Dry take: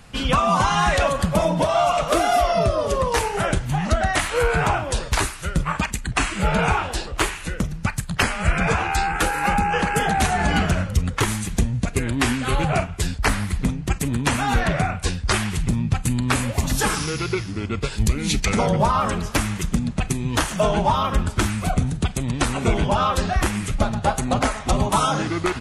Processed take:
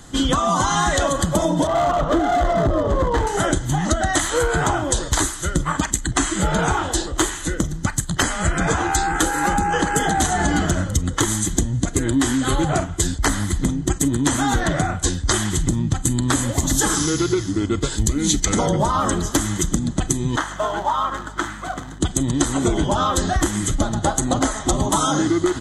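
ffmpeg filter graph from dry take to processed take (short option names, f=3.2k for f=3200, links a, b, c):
-filter_complex "[0:a]asettb=1/sr,asplit=3[a][b][c];[a]atrim=end=1.674[d];[b]atrim=start=1.67:end=3.27,asetpts=PTS-STARTPTS,afade=t=in:d=0.004:c=qsin,afade=t=out:st=1.596:d=0.004:c=qsin,lowpass=2.1k,lowshelf=f=180:g=9,volume=16dB,asoftclip=hard,volume=-16dB[e];[c]atrim=start=3.266[f];[d][e]acrossfade=d=0.004:c1=hsin:c2=qsin[g];[g][f]acrossfade=d=0.004:c1=qsin:c2=hsin,asettb=1/sr,asplit=3[h][i][j];[h]atrim=end=20.364[k];[i]atrim=start=20.36:end=22.01,asetpts=PTS-STARTPTS,afade=t=in:d=0.004:c=qsin,afade=t=out:st=1.646:d=0.004:c=qsin,acrusher=bits=4:mode=log:mix=0:aa=0.000001,bandpass=f=1.3k:t=q:w=1.2,aeval=exprs='val(0)+0.01*(sin(2*PI*50*n/s)+sin(2*PI*2*50*n/s)/2+sin(2*PI*3*50*n/s)/3+sin(2*PI*4*50*n/s)/4+sin(2*PI*5*50*n/s)/5)':c=same[l];[j]atrim=start=22.006[m];[k][l]acrossfade=d=0.004:c1=hsin:c2=qsin[n];[n][m]acrossfade=d=0.004:c1=qsin:c2=hsin,superequalizer=6b=2.82:12b=0.282:13b=1.41:15b=2.82,acompressor=threshold=-18dB:ratio=6,equalizer=f=11k:t=o:w=0.77:g=2,volume=3dB"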